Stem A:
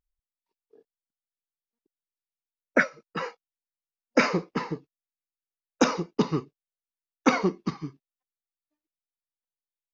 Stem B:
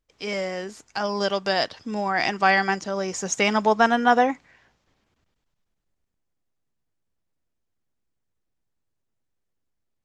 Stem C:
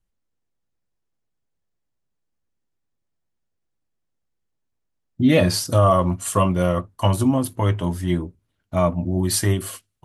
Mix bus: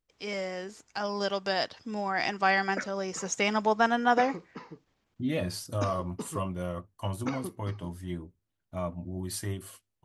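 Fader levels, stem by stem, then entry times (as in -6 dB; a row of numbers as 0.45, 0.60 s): -14.5, -6.0, -14.5 dB; 0.00, 0.00, 0.00 s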